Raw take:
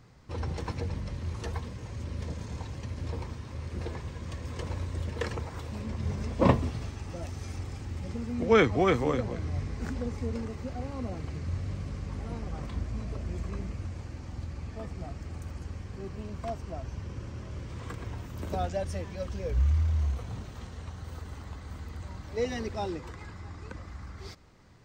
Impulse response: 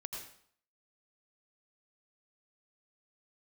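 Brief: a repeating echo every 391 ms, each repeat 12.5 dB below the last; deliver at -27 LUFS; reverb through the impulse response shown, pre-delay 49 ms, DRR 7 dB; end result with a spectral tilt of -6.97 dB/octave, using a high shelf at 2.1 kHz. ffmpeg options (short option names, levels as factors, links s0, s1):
-filter_complex "[0:a]highshelf=f=2100:g=-3,aecho=1:1:391|782|1173:0.237|0.0569|0.0137,asplit=2[s0][s1];[1:a]atrim=start_sample=2205,adelay=49[s2];[s1][s2]afir=irnorm=-1:irlink=0,volume=0.531[s3];[s0][s3]amix=inputs=2:normalize=0,volume=2"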